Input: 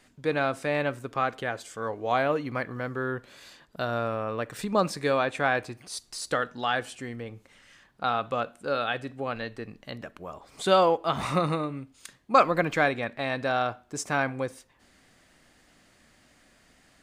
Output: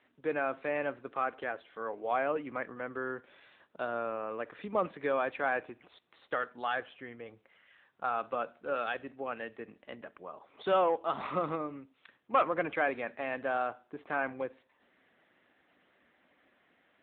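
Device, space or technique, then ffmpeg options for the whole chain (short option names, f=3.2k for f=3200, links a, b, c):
telephone: -filter_complex "[0:a]asplit=3[a][b][c];[a]afade=t=out:st=6.19:d=0.02[d];[b]asubboost=boost=4:cutoff=88,afade=t=in:st=6.19:d=0.02,afade=t=out:st=8.14:d=0.02[e];[c]afade=t=in:st=8.14:d=0.02[f];[d][e][f]amix=inputs=3:normalize=0,highpass=270,lowpass=3.3k,asoftclip=type=tanh:threshold=-13.5dB,volume=-4dB" -ar 8000 -c:a libopencore_amrnb -b:a 10200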